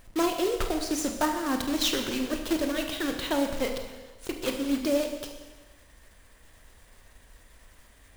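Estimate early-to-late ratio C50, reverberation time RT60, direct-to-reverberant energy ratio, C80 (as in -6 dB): 6.0 dB, 1.3 s, 4.0 dB, 7.5 dB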